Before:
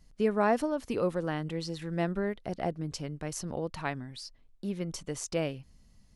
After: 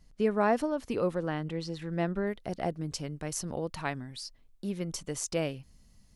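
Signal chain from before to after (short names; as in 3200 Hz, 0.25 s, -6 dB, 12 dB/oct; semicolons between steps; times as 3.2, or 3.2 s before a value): high shelf 6500 Hz -2.5 dB, from 1.16 s -8 dB, from 2.27 s +6 dB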